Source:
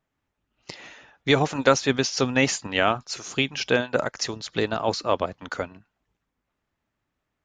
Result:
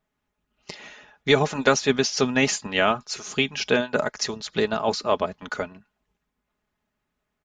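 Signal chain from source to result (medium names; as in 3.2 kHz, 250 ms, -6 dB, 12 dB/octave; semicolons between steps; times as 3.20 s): comb 4.8 ms, depth 49%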